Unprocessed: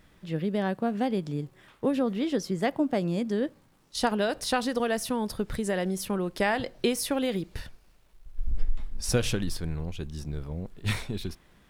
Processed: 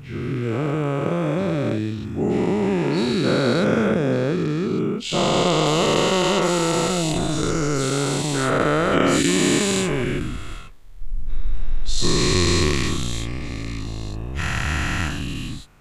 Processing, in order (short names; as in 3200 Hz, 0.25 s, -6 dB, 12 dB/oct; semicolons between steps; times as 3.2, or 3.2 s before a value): spectral dilation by 0.48 s; varispeed -26%